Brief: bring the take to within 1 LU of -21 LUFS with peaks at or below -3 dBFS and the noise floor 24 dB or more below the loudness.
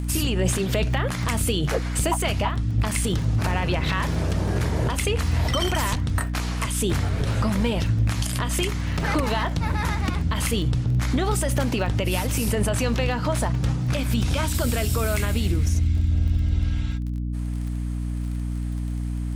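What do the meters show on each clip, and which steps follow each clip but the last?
ticks 27/s; hum 60 Hz; harmonics up to 300 Hz; hum level -24 dBFS; loudness -24.5 LUFS; peak -10.5 dBFS; loudness target -21.0 LUFS
-> de-click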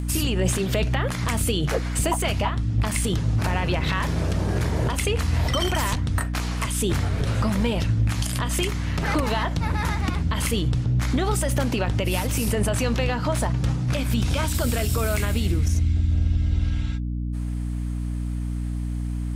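ticks 0.10/s; hum 60 Hz; harmonics up to 300 Hz; hum level -24 dBFS
-> notches 60/120/180/240/300 Hz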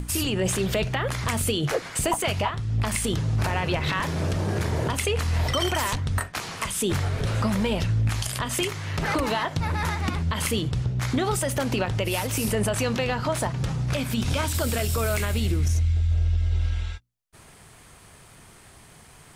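hum none; loudness -25.5 LUFS; peak -12.0 dBFS; loudness target -21.0 LUFS
-> gain +4.5 dB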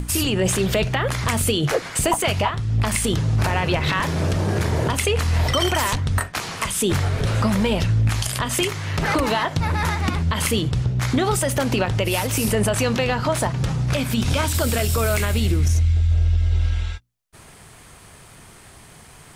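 loudness -21.0 LUFS; peak -7.5 dBFS; noise floor -46 dBFS

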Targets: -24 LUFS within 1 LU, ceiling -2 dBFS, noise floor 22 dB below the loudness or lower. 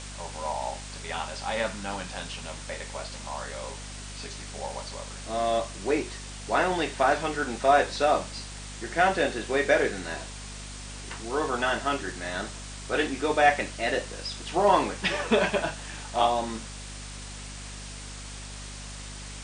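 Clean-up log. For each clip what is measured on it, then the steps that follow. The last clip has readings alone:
hum 50 Hz; harmonics up to 250 Hz; hum level -40 dBFS; noise floor -40 dBFS; noise floor target -50 dBFS; loudness -28.0 LUFS; peak -7.0 dBFS; loudness target -24.0 LUFS
-> de-hum 50 Hz, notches 5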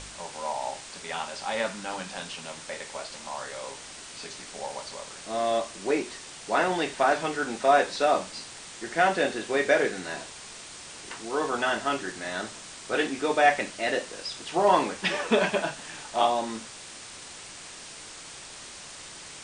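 hum none; noise floor -44 dBFS; noise floor target -50 dBFS
-> denoiser 6 dB, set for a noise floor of -44 dBFS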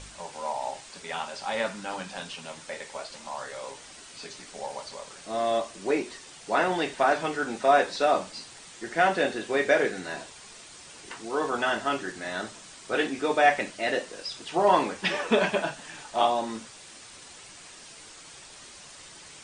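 noise floor -48 dBFS; noise floor target -50 dBFS
-> denoiser 6 dB, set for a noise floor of -48 dBFS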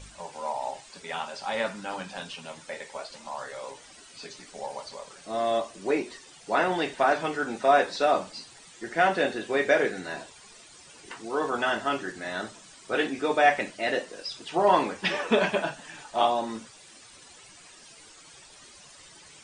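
noise floor -51 dBFS; loudness -27.5 LUFS; peak -7.0 dBFS; loudness target -24.0 LUFS
-> gain +3.5 dB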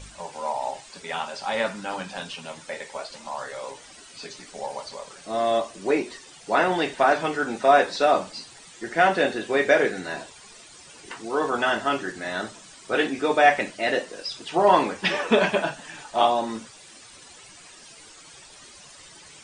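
loudness -24.0 LUFS; peak -3.5 dBFS; noise floor -48 dBFS

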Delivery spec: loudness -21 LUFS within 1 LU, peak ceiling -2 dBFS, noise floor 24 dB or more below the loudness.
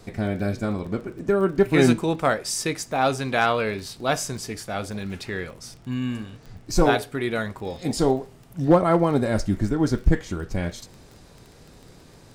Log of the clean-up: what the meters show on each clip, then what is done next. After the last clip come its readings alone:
ticks 22/s; loudness -24.0 LUFS; peak -4.5 dBFS; loudness target -21.0 LUFS
-> de-click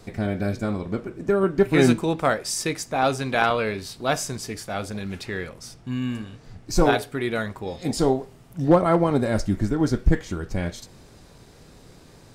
ticks 0.081/s; loudness -24.0 LUFS; peak -3.0 dBFS; loudness target -21.0 LUFS
-> gain +3 dB; limiter -2 dBFS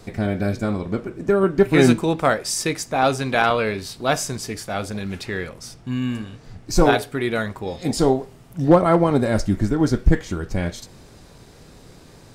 loudness -21.0 LUFS; peak -2.0 dBFS; noise floor -47 dBFS

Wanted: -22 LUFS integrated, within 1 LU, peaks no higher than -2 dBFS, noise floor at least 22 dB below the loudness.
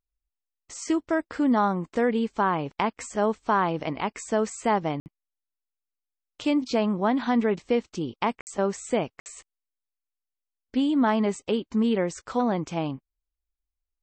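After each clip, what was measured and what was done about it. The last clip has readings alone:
dropouts 3; longest dropout 59 ms; loudness -26.5 LUFS; peak -10.5 dBFS; loudness target -22.0 LUFS
-> interpolate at 5/8.41/9.2, 59 ms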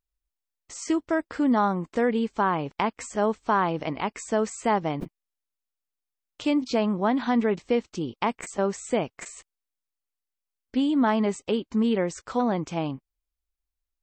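dropouts 0; loudness -26.5 LUFS; peak -10.5 dBFS; loudness target -22.0 LUFS
-> gain +4.5 dB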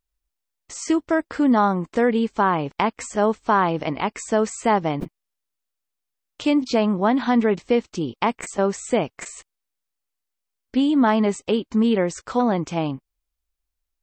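loudness -22.0 LUFS; peak -6.0 dBFS; noise floor -82 dBFS

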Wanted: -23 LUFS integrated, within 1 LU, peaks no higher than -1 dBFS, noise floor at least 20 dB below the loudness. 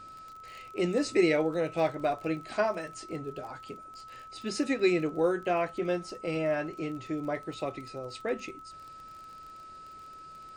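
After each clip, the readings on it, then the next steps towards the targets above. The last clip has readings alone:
ticks 30/s; steady tone 1300 Hz; tone level -45 dBFS; loudness -31.0 LUFS; peak -13.5 dBFS; loudness target -23.0 LUFS
-> de-click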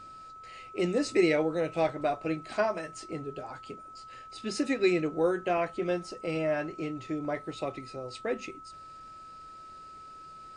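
ticks 0/s; steady tone 1300 Hz; tone level -45 dBFS
-> notch 1300 Hz, Q 30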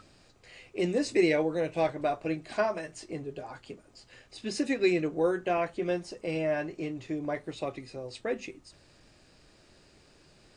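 steady tone none; loudness -31.0 LUFS; peak -13.5 dBFS; loudness target -23.0 LUFS
-> gain +8 dB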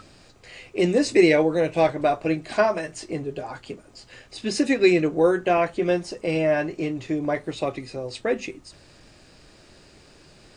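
loudness -23.0 LUFS; peak -5.5 dBFS; noise floor -53 dBFS

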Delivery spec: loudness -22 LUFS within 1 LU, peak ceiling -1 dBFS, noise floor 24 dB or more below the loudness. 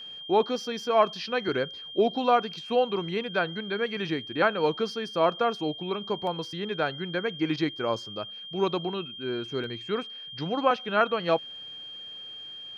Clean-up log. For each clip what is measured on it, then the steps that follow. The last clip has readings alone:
dropouts 2; longest dropout 1.3 ms; steady tone 3200 Hz; tone level -39 dBFS; loudness -28.0 LUFS; peak -9.0 dBFS; loudness target -22.0 LUFS
-> interpolate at 6.27/9.64, 1.3 ms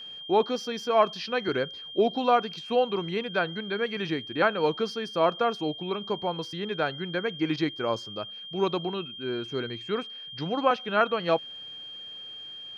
dropouts 0; steady tone 3200 Hz; tone level -39 dBFS
-> notch 3200 Hz, Q 30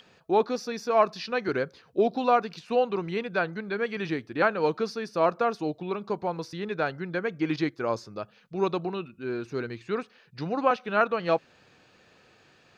steady tone none; loudness -28.5 LUFS; peak -8.5 dBFS; loudness target -22.0 LUFS
-> gain +6.5 dB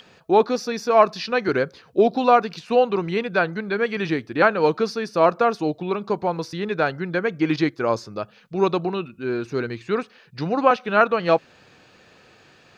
loudness -22.0 LUFS; peak -2.0 dBFS; noise floor -54 dBFS

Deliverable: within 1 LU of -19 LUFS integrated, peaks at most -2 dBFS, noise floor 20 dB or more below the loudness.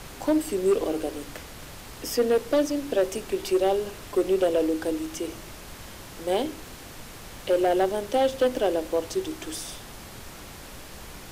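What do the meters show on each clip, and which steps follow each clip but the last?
clipped 1.1%; flat tops at -15.5 dBFS; noise floor -43 dBFS; noise floor target -46 dBFS; loudness -26.0 LUFS; peak -15.5 dBFS; loudness target -19.0 LUFS
-> clip repair -15.5 dBFS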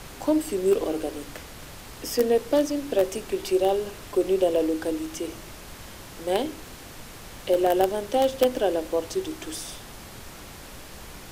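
clipped 0.0%; noise floor -43 dBFS; noise floor target -46 dBFS
-> noise print and reduce 6 dB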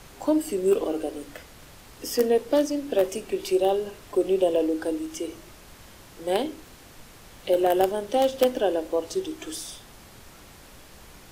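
noise floor -49 dBFS; loudness -25.5 LUFS; peak -6.5 dBFS; loudness target -19.0 LUFS
-> gain +6.5 dB; limiter -2 dBFS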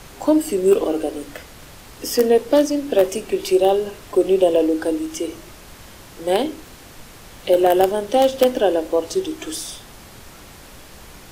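loudness -19.0 LUFS; peak -2.0 dBFS; noise floor -43 dBFS

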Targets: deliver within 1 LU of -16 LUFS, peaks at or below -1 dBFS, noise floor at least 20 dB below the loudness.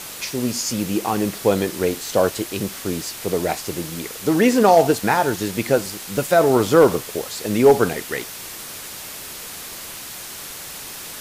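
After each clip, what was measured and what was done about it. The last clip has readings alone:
noise floor -35 dBFS; noise floor target -40 dBFS; loudness -19.5 LUFS; peak -3.5 dBFS; loudness target -16.0 LUFS
-> noise print and reduce 6 dB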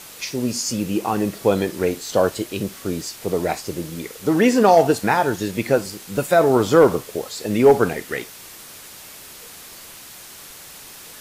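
noise floor -41 dBFS; loudness -20.0 LUFS; peak -4.0 dBFS; loudness target -16.0 LUFS
-> gain +4 dB; limiter -1 dBFS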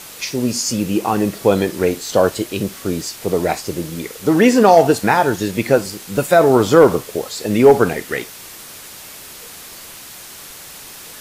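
loudness -16.0 LUFS; peak -1.0 dBFS; noise floor -37 dBFS

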